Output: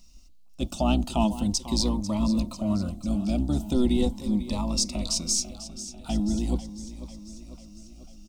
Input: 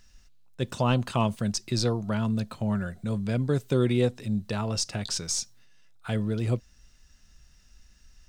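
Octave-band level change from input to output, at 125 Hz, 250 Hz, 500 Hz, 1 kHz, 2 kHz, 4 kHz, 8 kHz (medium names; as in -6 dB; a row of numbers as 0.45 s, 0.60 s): -4.0 dB, +4.0 dB, -3.0 dB, 0.0 dB, -7.0 dB, +3.0 dB, +4.0 dB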